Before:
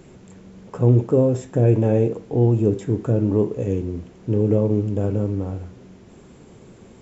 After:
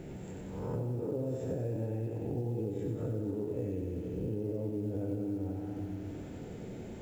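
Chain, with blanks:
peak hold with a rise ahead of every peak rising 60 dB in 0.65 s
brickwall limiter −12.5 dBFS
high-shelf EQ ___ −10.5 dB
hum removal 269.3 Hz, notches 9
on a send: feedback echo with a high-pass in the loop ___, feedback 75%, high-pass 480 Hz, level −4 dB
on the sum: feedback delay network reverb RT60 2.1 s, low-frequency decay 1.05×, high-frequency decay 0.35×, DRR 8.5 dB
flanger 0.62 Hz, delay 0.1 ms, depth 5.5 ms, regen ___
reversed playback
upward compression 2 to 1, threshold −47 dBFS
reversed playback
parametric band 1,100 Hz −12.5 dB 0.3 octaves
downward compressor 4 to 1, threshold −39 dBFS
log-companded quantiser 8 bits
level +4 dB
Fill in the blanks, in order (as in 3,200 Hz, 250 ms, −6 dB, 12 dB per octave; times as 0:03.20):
2,700 Hz, 93 ms, −86%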